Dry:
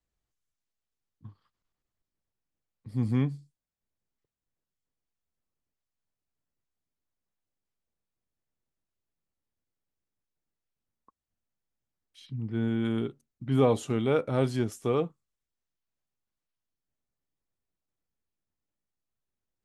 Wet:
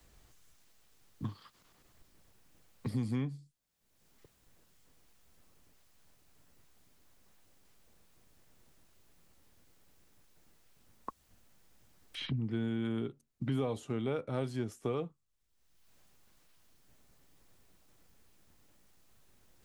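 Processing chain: three-band squash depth 100%; gain -7 dB

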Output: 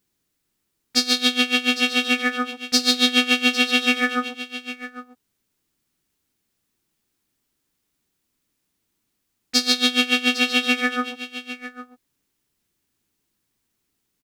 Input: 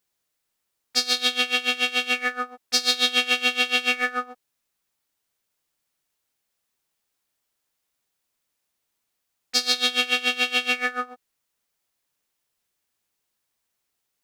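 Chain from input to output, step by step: resonant low shelf 420 Hz +9 dB, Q 1.5; echo 0.804 s -13.5 dB; gain +2.5 dB

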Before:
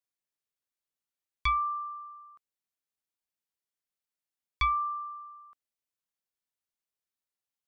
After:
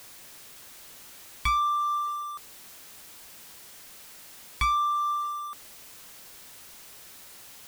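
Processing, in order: zero-crossing step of -46.5 dBFS; bell 110 Hz +9 dB 0.75 oct; sample leveller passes 2; in parallel at -2.5 dB: negative-ratio compressor -31 dBFS, ratio -1; on the sum: bit-crush 8-bit; gain -3 dB

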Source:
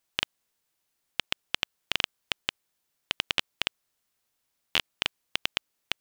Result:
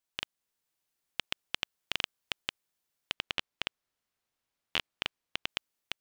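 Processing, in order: 3.13–5.49 high shelf 5700 Hz -9.5 dB; AGC; gain -9 dB

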